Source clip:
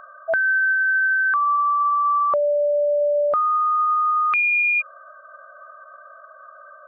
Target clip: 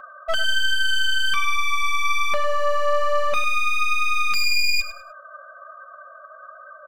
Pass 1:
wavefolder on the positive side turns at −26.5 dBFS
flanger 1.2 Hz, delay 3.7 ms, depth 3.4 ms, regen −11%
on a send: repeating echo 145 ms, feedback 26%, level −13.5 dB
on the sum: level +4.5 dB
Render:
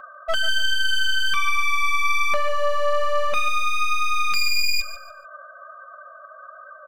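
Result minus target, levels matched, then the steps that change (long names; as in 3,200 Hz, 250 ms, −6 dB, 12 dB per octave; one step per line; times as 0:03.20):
echo 44 ms late
change: repeating echo 101 ms, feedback 26%, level −13.5 dB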